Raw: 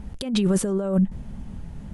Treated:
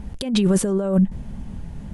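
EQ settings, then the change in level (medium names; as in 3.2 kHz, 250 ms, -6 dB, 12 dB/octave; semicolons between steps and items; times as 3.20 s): band-stop 1.3 kHz, Q 18; +3.0 dB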